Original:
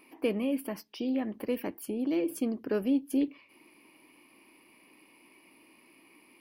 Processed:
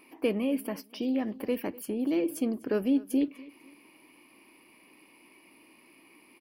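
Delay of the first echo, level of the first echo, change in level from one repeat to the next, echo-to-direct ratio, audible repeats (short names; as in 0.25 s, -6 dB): 0.249 s, -21.0 dB, -10.5 dB, -20.5 dB, 2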